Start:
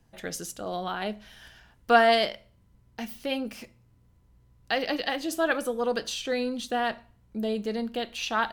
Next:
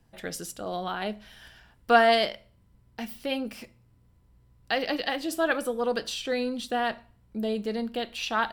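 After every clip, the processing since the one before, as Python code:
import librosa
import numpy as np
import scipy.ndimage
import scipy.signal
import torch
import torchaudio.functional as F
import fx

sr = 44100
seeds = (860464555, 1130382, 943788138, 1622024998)

y = fx.notch(x, sr, hz=6400.0, q=9.4)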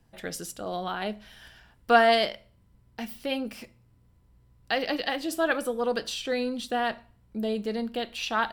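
y = x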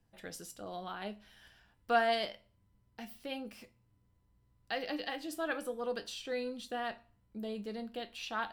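y = fx.comb_fb(x, sr, f0_hz=100.0, decay_s=0.2, harmonics='all', damping=0.0, mix_pct=60)
y = F.gain(torch.from_numpy(y), -5.5).numpy()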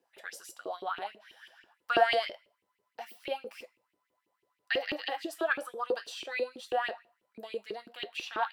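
y = fx.filter_lfo_highpass(x, sr, shape='saw_up', hz=6.1, low_hz=330.0, high_hz=2900.0, q=5.4)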